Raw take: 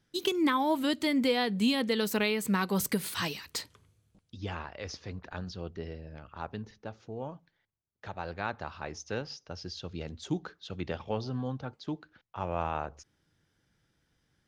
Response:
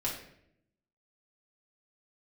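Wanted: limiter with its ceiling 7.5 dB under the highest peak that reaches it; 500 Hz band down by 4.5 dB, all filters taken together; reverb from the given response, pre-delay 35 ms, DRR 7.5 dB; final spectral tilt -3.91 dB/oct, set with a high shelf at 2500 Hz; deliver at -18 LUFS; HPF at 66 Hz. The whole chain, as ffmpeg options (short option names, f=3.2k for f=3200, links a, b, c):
-filter_complex "[0:a]highpass=66,equalizer=f=500:t=o:g=-6,highshelf=f=2.5k:g=7.5,alimiter=limit=-21dB:level=0:latency=1,asplit=2[a][b];[1:a]atrim=start_sample=2205,adelay=35[c];[b][c]afir=irnorm=-1:irlink=0,volume=-12dB[d];[a][d]amix=inputs=2:normalize=0,volume=15.5dB"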